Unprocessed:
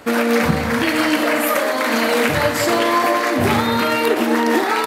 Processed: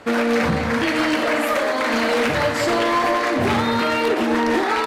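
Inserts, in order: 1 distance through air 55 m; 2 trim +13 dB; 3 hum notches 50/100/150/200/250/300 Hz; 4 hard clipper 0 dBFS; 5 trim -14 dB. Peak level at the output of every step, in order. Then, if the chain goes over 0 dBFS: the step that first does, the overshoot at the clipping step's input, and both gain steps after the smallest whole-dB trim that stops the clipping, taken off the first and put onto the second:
-4.5 dBFS, +8.5 dBFS, +9.0 dBFS, 0.0 dBFS, -14.0 dBFS; step 2, 9.0 dB; step 2 +4 dB, step 5 -5 dB

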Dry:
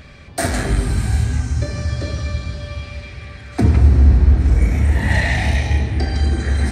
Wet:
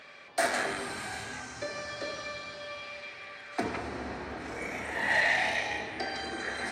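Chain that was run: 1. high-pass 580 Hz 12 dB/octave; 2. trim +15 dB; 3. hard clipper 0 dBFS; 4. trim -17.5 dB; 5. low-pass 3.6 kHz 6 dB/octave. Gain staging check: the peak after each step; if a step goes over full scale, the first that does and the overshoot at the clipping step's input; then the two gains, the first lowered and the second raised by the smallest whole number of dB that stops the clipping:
-10.5 dBFS, +4.5 dBFS, 0.0 dBFS, -17.5 dBFS, -17.5 dBFS; step 2, 4.5 dB; step 2 +10 dB, step 4 -12.5 dB

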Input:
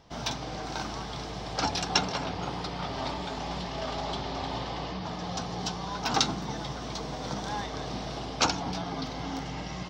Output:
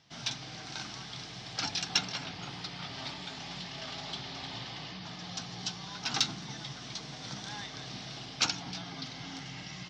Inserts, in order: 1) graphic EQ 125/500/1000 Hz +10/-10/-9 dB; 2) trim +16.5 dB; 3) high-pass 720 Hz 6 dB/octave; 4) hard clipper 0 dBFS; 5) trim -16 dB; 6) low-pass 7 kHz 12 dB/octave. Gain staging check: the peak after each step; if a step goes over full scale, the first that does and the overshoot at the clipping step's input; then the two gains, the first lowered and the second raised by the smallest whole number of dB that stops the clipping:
-8.0 dBFS, +8.5 dBFS, +8.0 dBFS, 0.0 dBFS, -16.0 dBFS, -15.0 dBFS; step 2, 8.0 dB; step 2 +8.5 dB, step 5 -8 dB

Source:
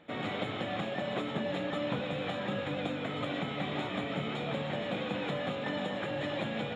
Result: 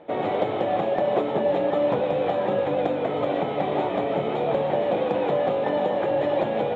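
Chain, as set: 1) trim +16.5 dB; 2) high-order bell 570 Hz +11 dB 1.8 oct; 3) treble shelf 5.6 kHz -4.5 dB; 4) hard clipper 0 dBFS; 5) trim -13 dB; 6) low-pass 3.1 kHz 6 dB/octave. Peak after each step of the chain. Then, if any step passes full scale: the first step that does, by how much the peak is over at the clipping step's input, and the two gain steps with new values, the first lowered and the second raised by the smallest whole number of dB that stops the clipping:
-3.0 dBFS, +4.0 dBFS, +4.0 dBFS, 0.0 dBFS, -13.0 dBFS, -13.0 dBFS; step 2, 4.0 dB; step 1 +12.5 dB, step 5 -9 dB

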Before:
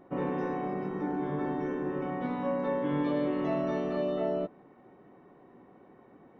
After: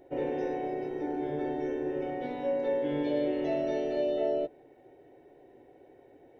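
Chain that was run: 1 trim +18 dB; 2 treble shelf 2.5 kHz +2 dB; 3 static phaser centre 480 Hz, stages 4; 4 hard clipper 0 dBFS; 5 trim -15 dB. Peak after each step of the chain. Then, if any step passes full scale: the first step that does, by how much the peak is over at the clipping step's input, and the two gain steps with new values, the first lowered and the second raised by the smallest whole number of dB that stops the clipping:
-1.0 dBFS, -1.0 dBFS, -3.0 dBFS, -3.0 dBFS, -18.0 dBFS; nothing clips

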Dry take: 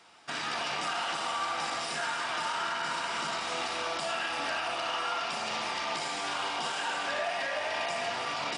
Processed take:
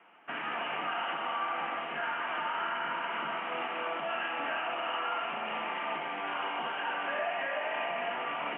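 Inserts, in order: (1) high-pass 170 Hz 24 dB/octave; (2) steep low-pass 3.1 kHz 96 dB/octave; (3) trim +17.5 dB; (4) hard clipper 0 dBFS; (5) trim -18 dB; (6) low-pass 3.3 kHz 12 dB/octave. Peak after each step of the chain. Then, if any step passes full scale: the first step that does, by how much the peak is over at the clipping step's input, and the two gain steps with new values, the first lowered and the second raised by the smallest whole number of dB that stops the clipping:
-20.5 dBFS, -20.0 dBFS, -2.5 dBFS, -2.5 dBFS, -20.5 dBFS, -21.0 dBFS; nothing clips

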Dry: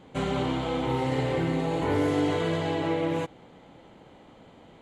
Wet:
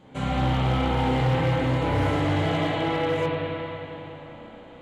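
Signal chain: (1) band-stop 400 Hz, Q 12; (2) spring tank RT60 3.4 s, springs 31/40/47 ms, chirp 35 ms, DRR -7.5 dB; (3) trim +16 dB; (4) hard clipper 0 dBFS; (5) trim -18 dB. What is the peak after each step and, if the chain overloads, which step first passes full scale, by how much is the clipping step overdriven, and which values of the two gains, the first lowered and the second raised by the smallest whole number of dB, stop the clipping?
-14.5 dBFS, -8.0 dBFS, +8.0 dBFS, 0.0 dBFS, -18.0 dBFS; step 3, 8.0 dB; step 3 +8 dB, step 5 -10 dB

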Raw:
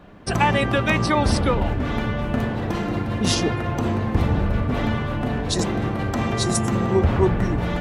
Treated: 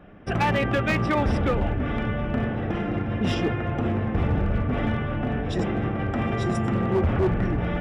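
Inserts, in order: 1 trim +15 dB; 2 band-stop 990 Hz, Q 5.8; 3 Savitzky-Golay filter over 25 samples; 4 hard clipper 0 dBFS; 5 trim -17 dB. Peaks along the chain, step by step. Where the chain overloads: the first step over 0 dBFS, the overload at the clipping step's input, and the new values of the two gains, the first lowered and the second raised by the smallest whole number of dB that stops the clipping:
+10.5 dBFS, +9.5 dBFS, +9.5 dBFS, 0.0 dBFS, -17.0 dBFS; step 1, 9.5 dB; step 1 +5 dB, step 5 -7 dB

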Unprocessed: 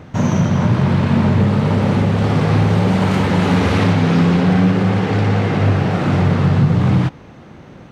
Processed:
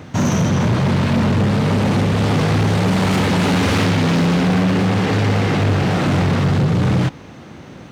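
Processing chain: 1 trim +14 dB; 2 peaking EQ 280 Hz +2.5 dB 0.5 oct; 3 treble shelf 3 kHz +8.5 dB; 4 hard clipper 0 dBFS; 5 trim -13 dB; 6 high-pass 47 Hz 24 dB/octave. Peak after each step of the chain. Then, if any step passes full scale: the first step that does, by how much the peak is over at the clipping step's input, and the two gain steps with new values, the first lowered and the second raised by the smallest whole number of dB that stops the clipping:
+7.5 dBFS, +9.0 dBFS, +10.0 dBFS, 0.0 dBFS, -13.0 dBFS, -6.0 dBFS; step 1, 10.0 dB; step 1 +4 dB, step 5 -3 dB

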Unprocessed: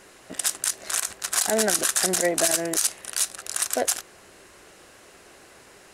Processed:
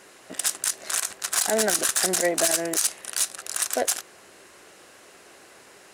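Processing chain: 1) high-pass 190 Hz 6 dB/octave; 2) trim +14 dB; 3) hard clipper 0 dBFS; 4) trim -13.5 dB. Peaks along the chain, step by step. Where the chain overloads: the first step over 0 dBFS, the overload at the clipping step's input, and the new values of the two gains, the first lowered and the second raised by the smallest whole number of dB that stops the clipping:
-6.0 dBFS, +8.0 dBFS, 0.0 dBFS, -13.5 dBFS; step 2, 8.0 dB; step 2 +6 dB, step 4 -5.5 dB

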